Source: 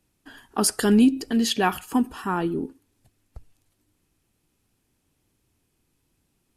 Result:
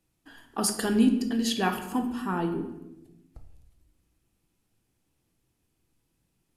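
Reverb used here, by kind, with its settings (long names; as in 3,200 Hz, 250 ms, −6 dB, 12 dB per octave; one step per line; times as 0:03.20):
rectangular room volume 340 cubic metres, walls mixed, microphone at 0.69 metres
level −5.5 dB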